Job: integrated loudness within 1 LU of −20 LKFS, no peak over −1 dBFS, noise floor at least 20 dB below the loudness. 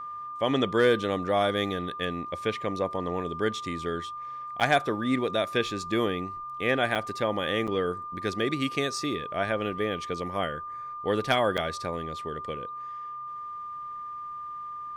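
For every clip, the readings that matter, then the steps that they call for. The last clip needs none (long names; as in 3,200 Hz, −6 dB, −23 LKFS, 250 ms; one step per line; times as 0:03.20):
number of dropouts 4; longest dropout 7.3 ms; interfering tone 1,200 Hz; level of the tone −35 dBFS; integrated loudness −29.0 LKFS; sample peak −11.0 dBFS; target loudness −20.0 LKFS
→ repair the gap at 0:04.60/0:06.95/0:07.67/0:11.57, 7.3 ms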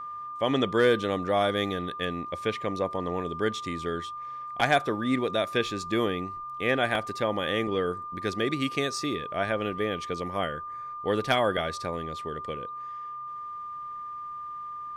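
number of dropouts 0; interfering tone 1,200 Hz; level of the tone −35 dBFS
→ notch filter 1,200 Hz, Q 30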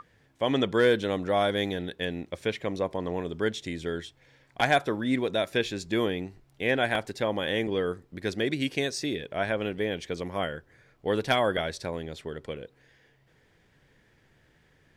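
interfering tone none found; integrated loudness −29.0 LKFS; sample peak −11.5 dBFS; target loudness −20.0 LKFS
→ level +9 dB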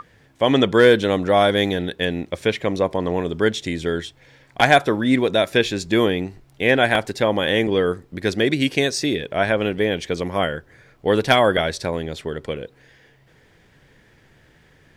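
integrated loudness −20.0 LKFS; sample peak −2.5 dBFS; background noise floor −55 dBFS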